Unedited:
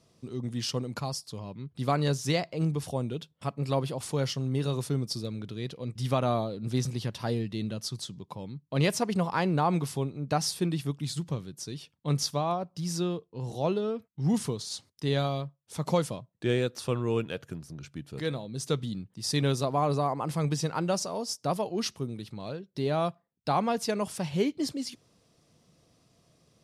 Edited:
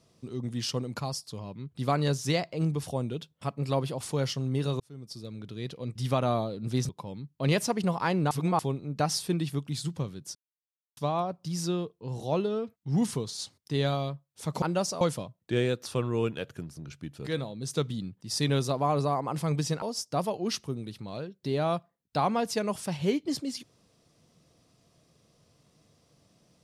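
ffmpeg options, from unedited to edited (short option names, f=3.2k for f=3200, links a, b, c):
-filter_complex "[0:a]asplit=10[a][b][c][d][e][f][g][h][i][j];[a]atrim=end=4.8,asetpts=PTS-STARTPTS,afade=t=out:st=4.796:d=0.004:c=hsin[k];[b]atrim=start=4.8:end=6.892,asetpts=PTS-STARTPTS,afade=t=in:d=0.93[l];[c]atrim=start=8.208:end=9.632[m];[d]atrim=start=9.628:end=9.912,asetpts=PTS-STARTPTS,areverse[n];[e]atrim=start=9.908:end=11.67,asetpts=PTS-STARTPTS,afade=t=out:st=1.758:d=0.004:c=hsin[o];[f]atrim=start=11.67:end=12.29,asetpts=PTS-STARTPTS,volume=0[p];[g]atrim=start=12.29:end=15.942,asetpts=PTS-STARTPTS,afade=t=in:d=0.004:c=hsin[q];[h]atrim=start=20.748:end=21.142[r];[i]atrim=start=15.938:end=20.752[s];[j]atrim=start=21.138[t];[k][l]concat=n=2:v=0:a=1[u];[u][m]acrossfade=d=0.004:c1=hsin:c2=hsin[v];[v][n]acrossfade=d=0.004:c1=hsin:c2=hsin[w];[o][p][q]concat=n=3:v=0:a=1[x];[w][x]acrossfade=d=0.004:c1=hsin:c2=hsin[y];[y][r]acrossfade=d=0.004:c1=hsin:c2=hsin[z];[z][s]acrossfade=d=0.004:c1=hsin:c2=hsin[aa];[aa][t]acrossfade=d=0.004:c1=hsin:c2=hsin"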